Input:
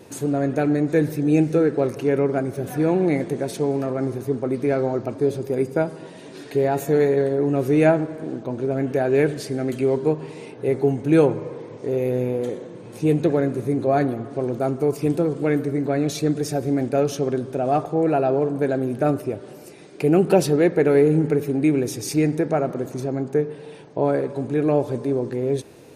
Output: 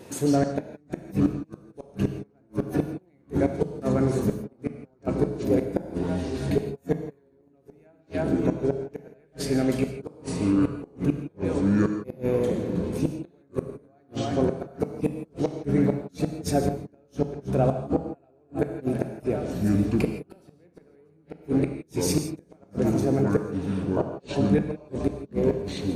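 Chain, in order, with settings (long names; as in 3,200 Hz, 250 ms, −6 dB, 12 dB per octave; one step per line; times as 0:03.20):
on a send: echo with a time of its own for lows and highs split 520 Hz, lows 724 ms, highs 318 ms, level −14.5 dB
on the sum: delay with pitch and tempo change per echo 85 ms, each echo −7 semitones, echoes 2, each echo −6 dB
gate with flip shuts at −11 dBFS, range −42 dB
reverb whose tail is shaped and stops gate 190 ms flat, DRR 6.5 dB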